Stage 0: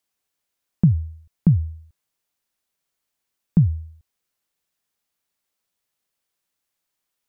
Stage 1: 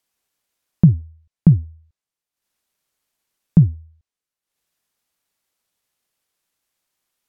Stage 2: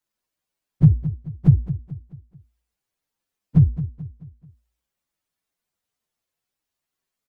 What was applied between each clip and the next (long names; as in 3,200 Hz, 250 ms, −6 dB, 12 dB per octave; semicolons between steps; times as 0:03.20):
treble cut that deepens with the level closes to 460 Hz, closed at −17 dBFS; transient designer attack +1 dB, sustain −11 dB; level +4 dB
partials spread apart or drawn together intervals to 129%; repeating echo 217 ms, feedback 43%, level −13 dB; level +1 dB